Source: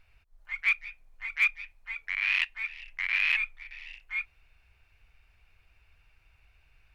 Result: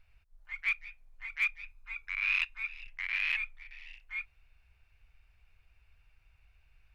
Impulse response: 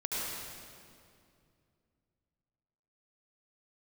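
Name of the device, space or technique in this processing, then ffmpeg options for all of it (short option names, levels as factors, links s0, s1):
low shelf boost with a cut just above: -filter_complex "[0:a]lowshelf=f=110:g=5.5,equalizer=f=310:t=o:w=1.1:g=-2.5,asettb=1/sr,asplit=3[s0][s1][s2];[s0]atrim=end=1.634[s3];[s1]atrim=start=1.63:end=2.87,asetpts=PTS-STARTPTS,afade=t=in:d=0.004:c=qsin,afade=t=out:st=1.236:d=0.004:c=qsin,aecho=1:1:0.8:0.58,atrim=end_sample=54684[s4];[s2]atrim=start=2.866[s5];[s3][s4]acrossfade=d=0.004:c1=hsin:c2=qsin[s6];[s6][s5]acrossfade=d=0.004:c1=qsin:c2=hsin,volume=0.531"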